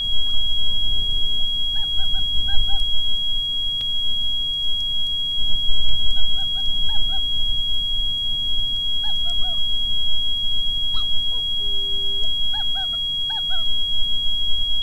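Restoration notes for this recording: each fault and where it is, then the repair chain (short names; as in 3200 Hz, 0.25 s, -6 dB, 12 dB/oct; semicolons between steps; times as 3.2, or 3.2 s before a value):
tone 3300 Hz -21 dBFS
3.81 gap 2.7 ms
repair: notch 3300 Hz, Q 30; interpolate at 3.81, 2.7 ms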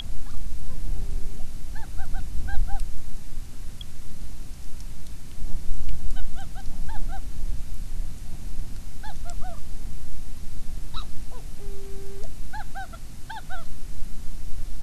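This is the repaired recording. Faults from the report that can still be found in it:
none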